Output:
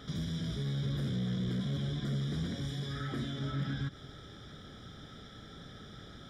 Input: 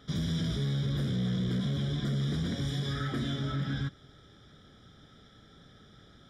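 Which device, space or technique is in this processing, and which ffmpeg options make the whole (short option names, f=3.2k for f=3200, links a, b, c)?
de-esser from a sidechain: -filter_complex "[0:a]asplit=2[a][b];[b]highpass=f=4.1k:p=1,apad=whole_len=277413[c];[a][c]sidechaincompress=threshold=-57dB:ratio=3:attack=1.2:release=91,volume=6.5dB"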